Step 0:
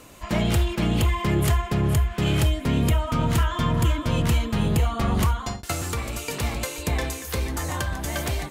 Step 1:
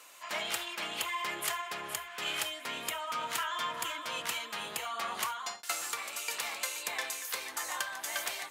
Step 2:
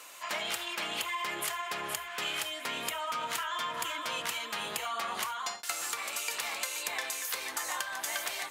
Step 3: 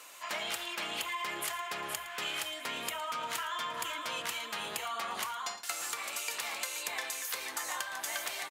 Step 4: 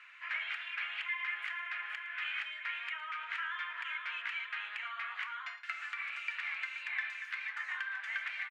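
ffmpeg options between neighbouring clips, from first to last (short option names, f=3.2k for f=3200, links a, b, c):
-af "highpass=1k,volume=-3dB"
-af "acompressor=threshold=-36dB:ratio=6,volume=5dB"
-af "aecho=1:1:112:0.141,volume=-2dB"
-af "asuperpass=centerf=1900:order=4:qfactor=1.8,volume=4dB"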